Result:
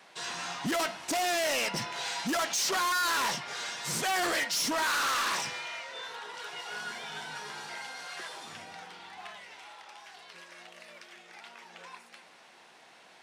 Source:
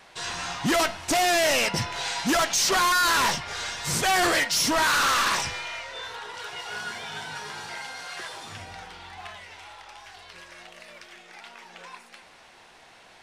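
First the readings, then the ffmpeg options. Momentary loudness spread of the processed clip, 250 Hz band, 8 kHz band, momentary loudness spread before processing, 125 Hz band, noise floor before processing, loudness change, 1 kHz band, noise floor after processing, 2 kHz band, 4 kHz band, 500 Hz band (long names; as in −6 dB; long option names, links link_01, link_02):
22 LU, −7.5 dB, −6.5 dB, 20 LU, −10.0 dB, −52 dBFS, −6.5 dB, −6.5 dB, −56 dBFS, −6.5 dB, −6.5 dB, −7.0 dB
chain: -af "highpass=frequency=150:width=0.5412,highpass=frequency=150:width=1.3066,asoftclip=type=tanh:threshold=-21dB,volume=-4dB"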